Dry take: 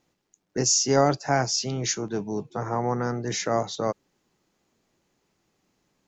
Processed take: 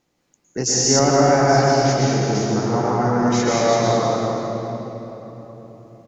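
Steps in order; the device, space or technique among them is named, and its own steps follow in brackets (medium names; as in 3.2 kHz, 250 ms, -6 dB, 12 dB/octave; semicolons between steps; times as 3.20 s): cave (delay 210 ms -8.5 dB; reverberation RT60 3.9 s, pre-delay 104 ms, DRR -6 dB); 0.99–2.35 s: low-pass 3 kHz 6 dB/octave; trim +1 dB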